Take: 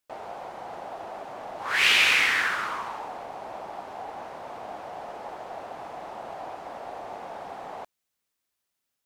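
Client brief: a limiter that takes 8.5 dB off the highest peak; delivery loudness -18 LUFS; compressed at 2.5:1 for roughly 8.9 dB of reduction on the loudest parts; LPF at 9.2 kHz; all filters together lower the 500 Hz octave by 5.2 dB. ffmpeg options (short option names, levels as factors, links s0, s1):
-af "lowpass=9200,equalizer=f=500:t=o:g=-7.5,acompressor=threshold=0.0316:ratio=2.5,volume=10.6,alimiter=limit=0.531:level=0:latency=1"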